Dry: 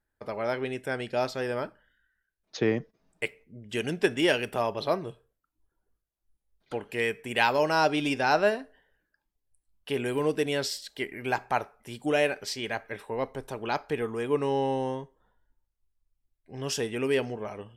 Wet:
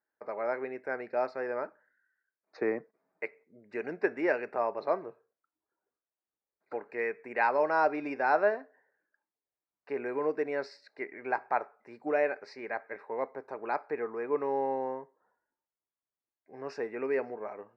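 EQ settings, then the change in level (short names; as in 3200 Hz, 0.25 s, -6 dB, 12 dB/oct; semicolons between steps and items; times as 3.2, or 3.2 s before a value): BPF 410–7000 Hz; Butterworth band-stop 3200 Hz, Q 1.5; air absorption 370 m; 0.0 dB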